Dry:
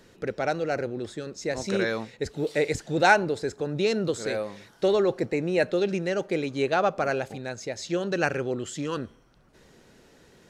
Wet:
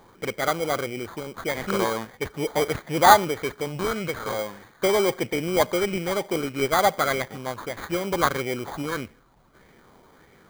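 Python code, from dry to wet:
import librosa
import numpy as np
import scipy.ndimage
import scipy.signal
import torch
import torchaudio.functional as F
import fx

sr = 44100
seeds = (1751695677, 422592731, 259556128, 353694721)

y = fx.peak_eq(x, sr, hz=320.0, db=-6.0, octaves=1.3, at=(3.68, 4.39))
y = fx.sample_hold(y, sr, seeds[0], rate_hz=2700.0, jitter_pct=0)
y = fx.bell_lfo(y, sr, hz=1.6, low_hz=840.0, high_hz=2100.0, db=9)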